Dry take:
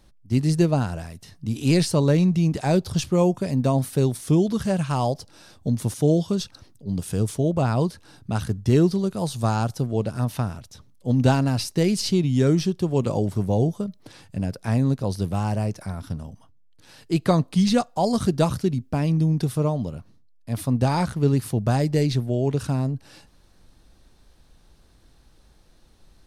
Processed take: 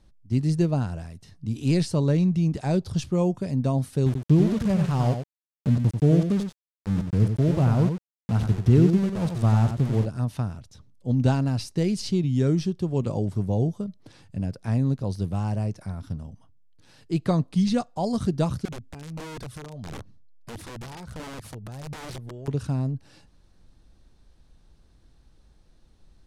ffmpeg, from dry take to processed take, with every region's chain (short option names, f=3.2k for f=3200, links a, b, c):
-filter_complex "[0:a]asettb=1/sr,asplit=3[a][b][c];[a]atrim=end=4.064[d];[b]atrim=start=4.06:end=10.06,asetpts=PTS-STARTPTS,afade=t=in:d=0.004:c=qsin,afade=t=out:st=5.996:d=0.004:c=qsin,bass=f=250:g=5,treble=f=4k:g=-6,aeval=exprs='val(0)*gte(abs(val(0)),0.0473)':c=same,aecho=1:1:91:0.447,atrim=end_sample=264600[e];[c]atrim=start=10.056[f];[d][e]acrossfade=d=0.004:c1=hsin:c2=qsin[g];[g][f]acrossfade=d=0.004:c1=qsin:c2=hsin,asettb=1/sr,asplit=3[h][i][j];[h]atrim=end=18.654[k];[i]atrim=start=18.65:end=22.48,asetpts=PTS-STARTPTS,afade=t=in:d=0.004:c=qsin,afade=t=out:st=3.826:d=0.004:c=qsin,acompressor=threshold=-30dB:ratio=16:attack=3.2:release=140:knee=1:detection=peak,aphaser=in_gain=1:out_gain=1:delay=2.5:decay=0.47:speed=1.5:type=sinusoidal,aeval=exprs='(mod(25.1*val(0)+1,2)-1)/25.1':c=same[l];[j]atrim=start=22.476[m];[k][l]acrossfade=d=0.004:c1=hsin:c2=qsin[n];[n][m]acrossfade=d=0.004:c1=qsin:c2=hsin,lowpass=10k,lowshelf=f=290:g=6.5,volume=-7dB"